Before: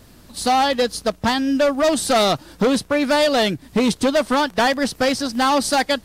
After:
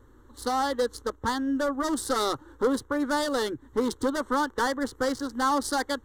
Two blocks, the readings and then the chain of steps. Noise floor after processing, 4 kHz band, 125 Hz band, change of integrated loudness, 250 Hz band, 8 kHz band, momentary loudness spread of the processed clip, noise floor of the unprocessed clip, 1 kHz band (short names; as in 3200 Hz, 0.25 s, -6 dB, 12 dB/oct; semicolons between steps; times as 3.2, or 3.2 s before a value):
-56 dBFS, -12.5 dB, -14.0 dB, -9.0 dB, -8.0 dB, -9.0 dB, 4 LU, -48 dBFS, -8.0 dB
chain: Wiener smoothing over 9 samples; fixed phaser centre 670 Hz, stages 6; gain -4 dB